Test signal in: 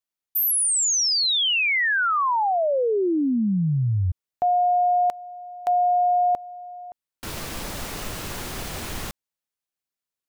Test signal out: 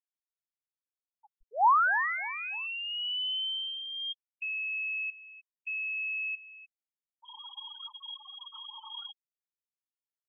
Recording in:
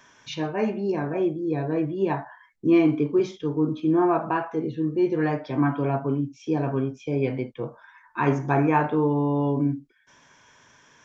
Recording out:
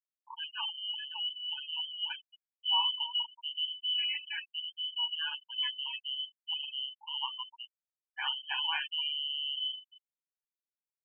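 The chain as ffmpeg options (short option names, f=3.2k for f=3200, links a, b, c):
-filter_complex "[0:a]equalizer=f=125:t=o:w=1:g=-11,equalizer=f=500:t=o:w=1:g=-6,equalizer=f=1k:t=o:w=1:g=-10,equalizer=f=2k:t=o:w=1:g=4,lowpass=f=2.8k:t=q:w=0.5098,lowpass=f=2.8k:t=q:w=0.6013,lowpass=f=2.8k:t=q:w=0.9,lowpass=f=2.8k:t=q:w=2.563,afreqshift=-3300,lowshelf=f=590:t=q:w=3:g=-14,asplit=2[a][b];[b]adelay=302,lowpass=f=1.3k:p=1,volume=-10.5dB,asplit=2[c][d];[d]adelay=302,lowpass=f=1.3k:p=1,volume=0.52,asplit=2[e][f];[f]adelay=302,lowpass=f=1.3k:p=1,volume=0.52,asplit=2[g][h];[h]adelay=302,lowpass=f=1.3k:p=1,volume=0.52,asplit=2[i][j];[j]adelay=302,lowpass=f=1.3k:p=1,volume=0.52,asplit=2[k][l];[l]adelay=302,lowpass=f=1.3k:p=1,volume=0.52[m];[c][e][g][i][k][m]amix=inputs=6:normalize=0[n];[a][n]amix=inputs=2:normalize=0,afftfilt=real='re*gte(hypot(re,im),0.0794)':imag='im*gte(hypot(re,im),0.0794)':win_size=1024:overlap=0.75,volume=-7.5dB"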